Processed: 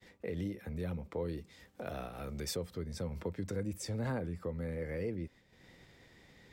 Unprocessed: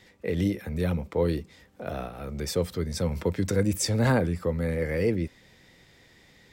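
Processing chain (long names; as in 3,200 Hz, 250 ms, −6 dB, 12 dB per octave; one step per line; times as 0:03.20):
downward compressor 2 to 1, threshold −46 dBFS, peak gain reduction 14.5 dB
high-shelf EQ 2,200 Hz −3.5 dB, from 0:01.38 +3.5 dB, from 0:02.56 −5.5 dB
downward expander −54 dBFS
level +1 dB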